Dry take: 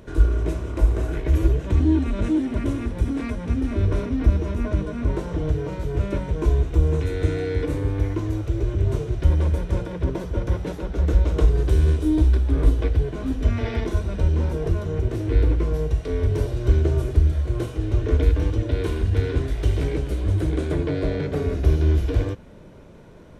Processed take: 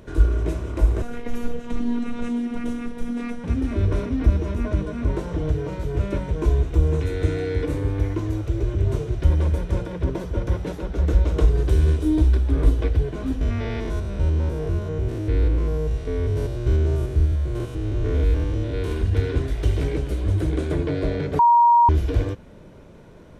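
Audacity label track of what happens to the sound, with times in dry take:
1.020000	3.440000	phases set to zero 239 Hz
13.410000	18.920000	spectrum averaged block by block every 100 ms
21.390000	21.890000	beep over 946 Hz −11 dBFS

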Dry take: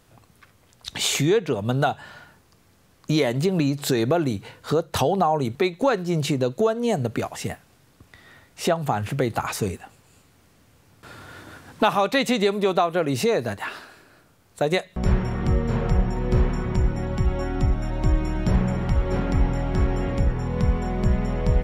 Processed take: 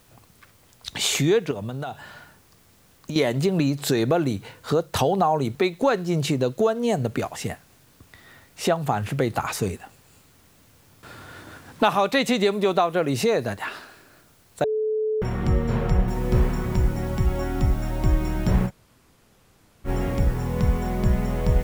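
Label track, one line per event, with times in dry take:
1.510000	3.160000	downward compressor, threshold −27 dBFS
14.640000	15.220000	beep over 433 Hz −21 dBFS
16.080000	16.080000	noise floor change −61 dB −50 dB
18.680000	19.870000	fill with room tone, crossfade 0.06 s

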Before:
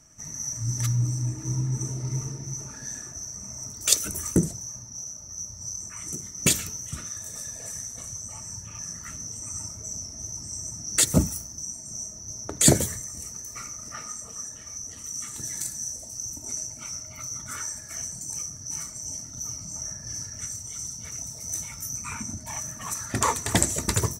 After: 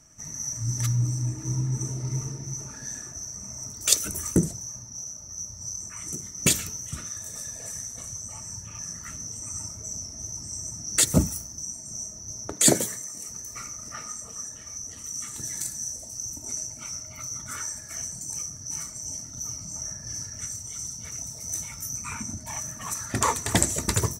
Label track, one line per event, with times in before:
12.520000	13.290000	high-pass filter 210 Hz

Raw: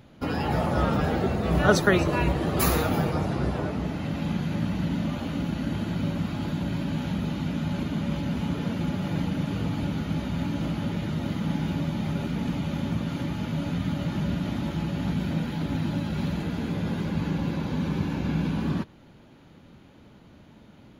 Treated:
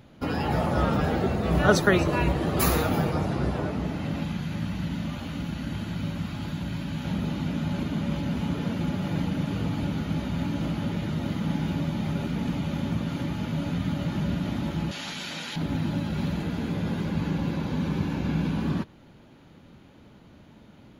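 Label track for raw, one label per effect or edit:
4.240000	7.050000	parametric band 420 Hz −6.5 dB 2.4 octaves
14.910000	15.560000	meter weighting curve ITU-R 468

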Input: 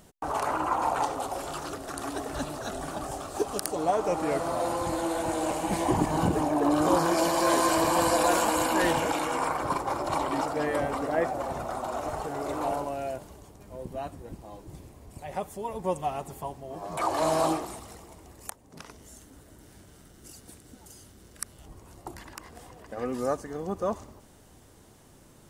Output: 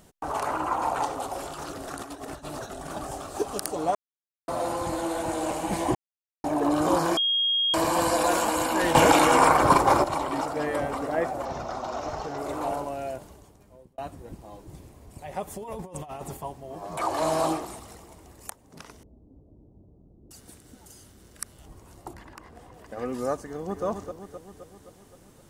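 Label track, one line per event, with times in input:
1.420000	2.930000	compressor whose output falls as the input rises −37 dBFS, ratio −0.5
3.950000	4.480000	silence
5.950000	6.440000	silence
7.170000	7.740000	beep over 3,260 Hz −21 dBFS
8.950000	10.040000	clip gain +10.5 dB
11.450000	12.380000	high shelf with overshoot 7,300 Hz −9.5 dB, Q 3
13.250000	13.980000	fade out
15.470000	16.370000	compressor whose output falls as the input rises −38 dBFS
19.030000	20.310000	Gaussian smoothing sigma 14 samples
22.130000	22.740000	high-shelf EQ 3,100 Hz −10.5 dB
23.430000	23.850000	delay throw 260 ms, feedback 60%, level −6.5 dB

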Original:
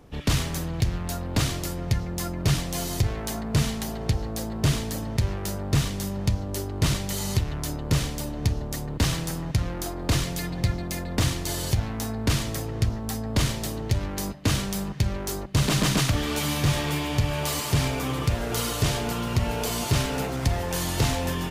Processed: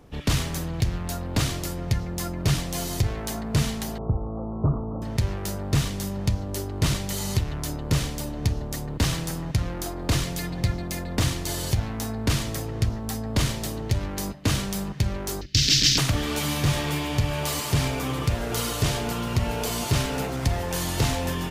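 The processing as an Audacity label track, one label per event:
3.980000	5.020000	Butterworth low-pass 1,300 Hz 96 dB per octave
15.410000	15.980000	drawn EQ curve 120 Hz 0 dB, 190 Hz −12 dB, 280 Hz −2 dB, 960 Hz −27 dB, 1,700 Hz −2 dB, 5,400 Hz +15 dB, 9,800 Hz −9 dB, 14,000 Hz −1 dB

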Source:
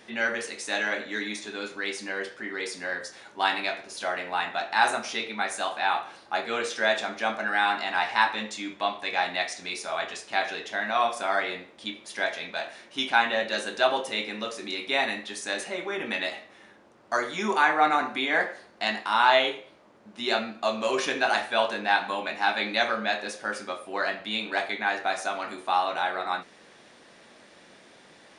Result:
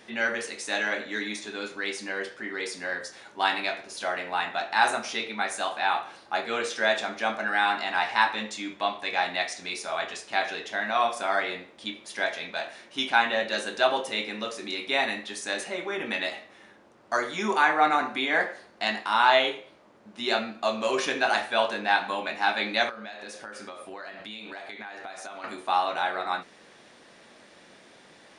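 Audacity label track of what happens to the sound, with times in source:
22.890000	25.440000	downward compressor 8 to 1, threshold −36 dBFS

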